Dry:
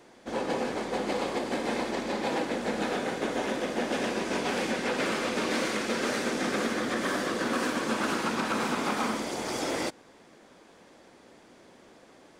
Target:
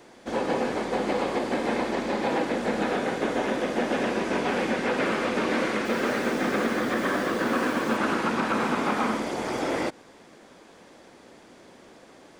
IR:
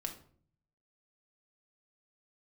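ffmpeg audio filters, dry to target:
-filter_complex "[0:a]acrossover=split=2800[s0][s1];[s1]acompressor=threshold=0.00447:ratio=4:attack=1:release=60[s2];[s0][s2]amix=inputs=2:normalize=0,asettb=1/sr,asplit=3[s3][s4][s5];[s3]atrim=end=5.854[s6];[s4]atrim=start=5.85:end=7.97,asetpts=PTS-STARTPTS,afade=t=in:d=0.004:c=qsin,afade=t=out:st=2.116:d=0.004:c=qsin,acrusher=bits=7:mix=0:aa=0.5[s7];[s5]atrim=start=7.966[s8];[s6][s7]acrossfade=d=0.004:c1=hsin:c2=qsin[s9];[s9][s8]acrossfade=d=0.004:c1=qsin:c2=hsin,volume=1.58"

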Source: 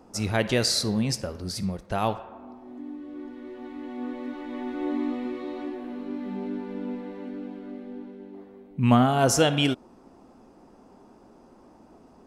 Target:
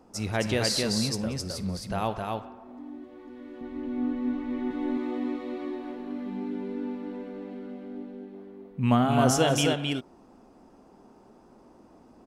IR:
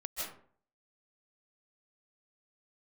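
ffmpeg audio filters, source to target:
-filter_complex "[0:a]asettb=1/sr,asplit=3[s0][s1][s2];[s0]atrim=end=3.614[s3];[s1]atrim=start=3.61:end=4.71,asetpts=PTS-STARTPTS,afade=t=in:d=0.004:c=qsin,afade=t=out:st=1.096:d=0.004:c=qsin,bass=f=250:g=14,treble=f=4000:g=-4[s4];[s2]atrim=start=4.706[s5];[s3][s4]acrossfade=d=0.004:c1=hsin:c2=qsin[s6];[s6][s5]acrossfade=d=0.004:c1=qsin:c2=hsin,aecho=1:1:185|264:0.112|0.708,volume=0.668"

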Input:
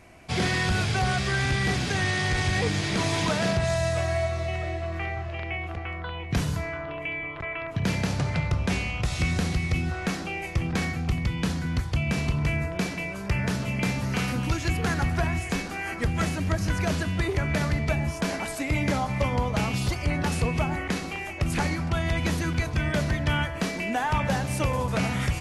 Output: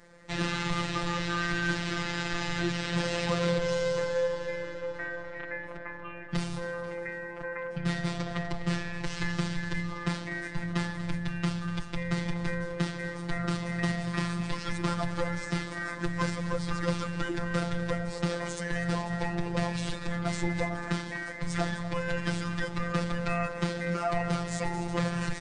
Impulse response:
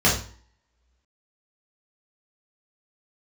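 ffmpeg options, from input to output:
-af "aecho=1:1:247|494|741|988|1235|1482:0.2|0.116|0.0671|0.0389|0.0226|0.0131,asetrate=35002,aresample=44100,atempo=1.25992,afftfilt=real='hypot(re,im)*cos(PI*b)':imag='0':win_size=1024:overlap=0.75"

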